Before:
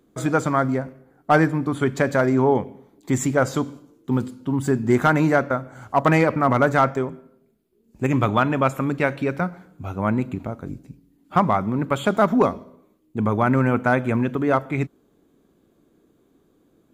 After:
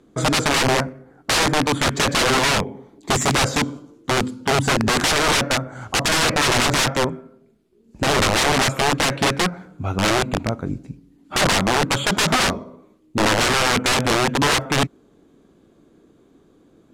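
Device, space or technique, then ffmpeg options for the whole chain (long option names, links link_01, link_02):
overflowing digital effects unit: -af "aeval=exprs='(mod(8.41*val(0)+1,2)-1)/8.41':channel_layout=same,lowpass=8400,volume=6.5dB"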